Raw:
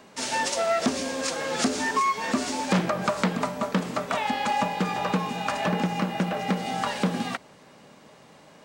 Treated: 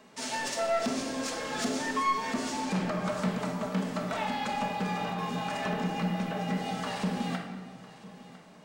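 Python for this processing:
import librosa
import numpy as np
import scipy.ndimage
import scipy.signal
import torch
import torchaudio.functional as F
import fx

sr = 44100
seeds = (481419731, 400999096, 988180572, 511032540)

y = fx.high_shelf(x, sr, hz=12000.0, db=-9.0, at=(2.6, 3.09))
y = fx.over_compress(y, sr, threshold_db=-27.0, ratio=-0.5, at=(5.0, 5.61))
y = 10.0 ** (-20.5 / 20.0) * np.tanh(y / 10.0 ** (-20.5 / 20.0))
y = y + 10.0 ** (-18.5 / 20.0) * np.pad(y, (int(1003 * sr / 1000.0), 0))[:len(y)]
y = fx.room_shoebox(y, sr, seeds[0], volume_m3=1000.0, walls='mixed', distance_m=1.5)
y = F.gain(torch.from_numpy(y), -6.5).numpy()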